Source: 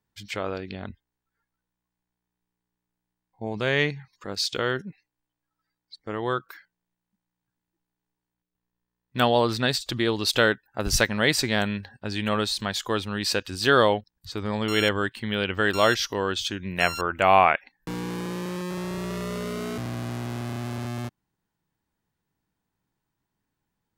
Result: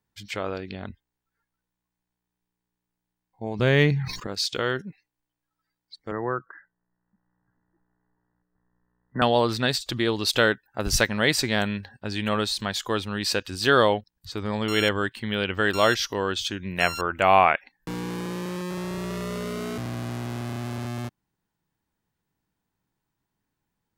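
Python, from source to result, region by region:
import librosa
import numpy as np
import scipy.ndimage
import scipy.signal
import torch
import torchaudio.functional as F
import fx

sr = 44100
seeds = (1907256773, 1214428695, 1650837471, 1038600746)

y = fx.chain(x, sr, fx.median_filter(points=3),
    fx.low_shelf(hz=350.0, db=10.5),
    fx.sustainer(db_per_s=57.0), at=(3.59, 4.27))
y = fx.chain(y, sr, fx.brickwall_lowpass(high_hz=2000.0),
    fx.band_squash(depth_pct=40), at=(6.11, 9.22))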